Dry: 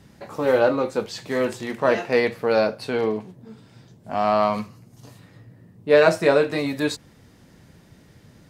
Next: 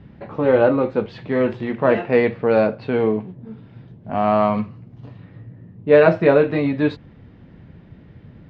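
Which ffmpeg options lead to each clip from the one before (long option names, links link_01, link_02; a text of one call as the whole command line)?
ffmpeg -i in.wav -af "lowpass=frequency=3200:width=0.5412,lowpass=frequency=3200:width=1.3066,lowshelf=frequency=380:gain=9" out.wav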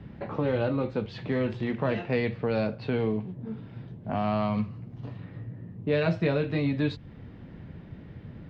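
ffmpeg -i in.wav -filter_complex "[0:a]acrossover=split=170|3000[link_01][link_02][link_03];[link_02]acompressor=threshold=-31dB:ratio=3[link_04];[link_01][link_04][link_03]amix=inputs=3:normalize=0" out.wav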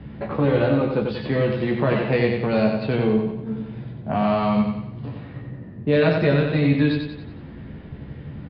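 ffmpeg -i in.wav -filter_complex "[0:a]asplit=2[link_01][link_02];[link_02]adelay=14,volume=-6dB[link_03];[link_01][link_03]amix=inputs=2:normalize=0,asplit=2[link_04][link_05];[link_05]aecho=0:1:92|184|276|368|460|552:0.596|0.28|0.132|0.0618|0.0291|0.0137[link_06];[link_04][link_06]amix=inputs=2:normalize=0,aresample=11025,aresample=44100,volume=5dB" out.wav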